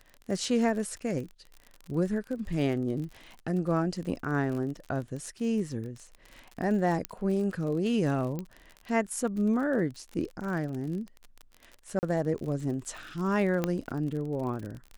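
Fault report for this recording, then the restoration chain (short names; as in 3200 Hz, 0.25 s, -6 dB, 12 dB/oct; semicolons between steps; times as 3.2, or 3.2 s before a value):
crackle 46/s -36 dBFS
7.05 pop -14 dBFS
8.39 pop -22 dBFS
11.99–12.03 gap 39 ms
13.64 pop -14 dBFS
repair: de-click; interpolate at 11.99, 39 ms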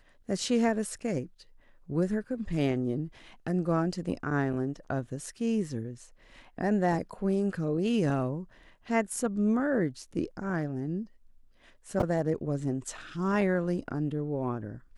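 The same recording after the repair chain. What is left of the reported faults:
none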